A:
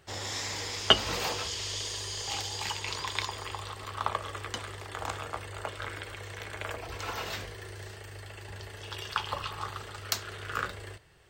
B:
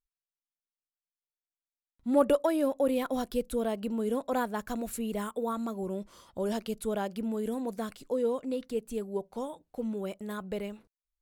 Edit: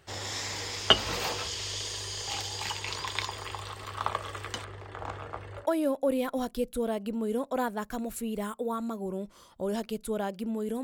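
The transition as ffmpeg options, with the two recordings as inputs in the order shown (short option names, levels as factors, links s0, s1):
-filter_complex "[0:a]asettb=1/sr,asplit=3[s0][s1][s2];[s0]atrim=end=4.644[s3];[s1]atrim=start=4.64:end=5.67,asetpts=PTS-STARTPTS,afade=t=in:d=0.004:c=qsin,afade=t=out:st=1.026:d=0.004:c=qsin,lowpass=f=1200:p=1[s4];[s2]atrim=start=5.666[s5];[s3][s4]acrossfade=d=0.004:c1=hsin:c2=qsin[s6];[s6][s5]acrossfade=d=0.004:c1=qsin:c2=hsin,apad=whole_dur=10.83,atrim=end=10.83,atrim=end=5.67,asetpts=PTS-STARTPTS[s7];[1:a]atrim=start=2.34:end=7.6,asetpts=PTS-STARTPTS[s8];[s7][s8]acrossfade=d=0.1:c1=tri:c2=tri"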